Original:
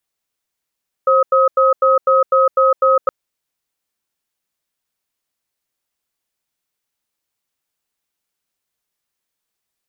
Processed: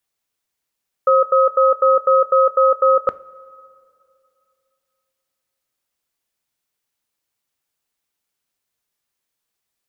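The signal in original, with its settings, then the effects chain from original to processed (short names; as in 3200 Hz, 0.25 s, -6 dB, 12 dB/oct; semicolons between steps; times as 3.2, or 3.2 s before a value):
cadence 531 Hz, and 1270 Hz, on 0.16 s, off 0.09 s, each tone -12 dBFS 2.02 s
two-slope reverb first 0.34 s, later 2.7 s, from -16 dB, DRR 15 dB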